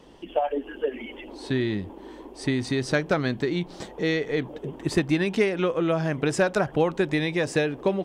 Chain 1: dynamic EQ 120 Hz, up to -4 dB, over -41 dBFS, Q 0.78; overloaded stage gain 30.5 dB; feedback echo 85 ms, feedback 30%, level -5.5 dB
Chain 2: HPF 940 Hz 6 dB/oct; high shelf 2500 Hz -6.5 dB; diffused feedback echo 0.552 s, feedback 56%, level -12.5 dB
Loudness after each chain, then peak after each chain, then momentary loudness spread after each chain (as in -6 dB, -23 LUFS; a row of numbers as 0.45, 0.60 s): -33.0, -33.0 LUFS; -25.5, -12.5 dBFS; 6, 11 LU